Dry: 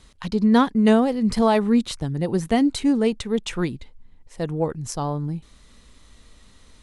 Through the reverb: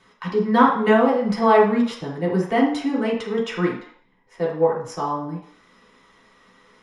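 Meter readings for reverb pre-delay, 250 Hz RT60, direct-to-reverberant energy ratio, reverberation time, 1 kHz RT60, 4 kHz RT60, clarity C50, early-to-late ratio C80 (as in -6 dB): 3 ms, 0.50 s, -6.0 dB, 0.60 s, 0.65 s, 0.60 s, 5.0 dB, 9.0 dB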